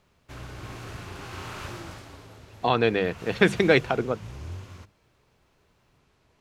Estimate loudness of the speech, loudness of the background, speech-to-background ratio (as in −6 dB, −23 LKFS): −23.5 LKFS, −41.5 LKFS, 18.0 dB